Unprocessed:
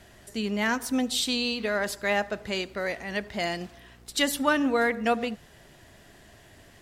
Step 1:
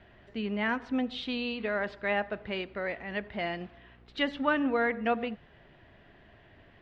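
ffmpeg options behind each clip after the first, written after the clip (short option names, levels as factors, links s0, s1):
-af "lowpass=f=3100:w=0.5412,lowpass=f=3100:w=1.3066,volume=0.668"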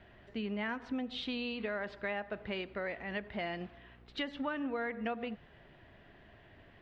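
-af "acompressor=threshold=0.0251:ratio=6,volume=0.841"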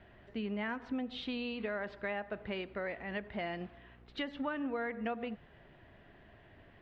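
-af "highshelf=f=4000:g=-7"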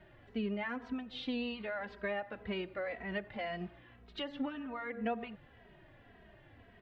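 -filter_complex "[0:a]asplit=2[s0][s1];[s1]adelay=2.8,afreqshift=-1.9[s2];[s0][s2]amix=inputs=2:normalize=1,volume=1.33"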